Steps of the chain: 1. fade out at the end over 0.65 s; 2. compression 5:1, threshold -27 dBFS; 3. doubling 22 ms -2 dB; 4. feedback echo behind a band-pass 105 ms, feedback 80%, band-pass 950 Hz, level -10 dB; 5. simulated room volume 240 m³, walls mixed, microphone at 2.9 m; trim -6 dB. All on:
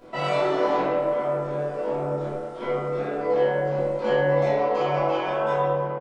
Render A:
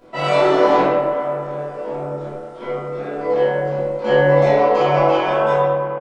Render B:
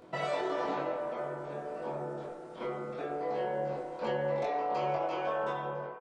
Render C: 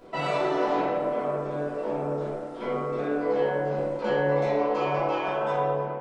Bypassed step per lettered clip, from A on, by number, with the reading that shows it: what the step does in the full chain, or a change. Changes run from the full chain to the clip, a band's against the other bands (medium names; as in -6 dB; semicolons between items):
2, mean gain reduction 3.5 dB; 5, echo-to-direct 9.0 dB to -8.0 dB; 3, 250 Hz band +3.0 dB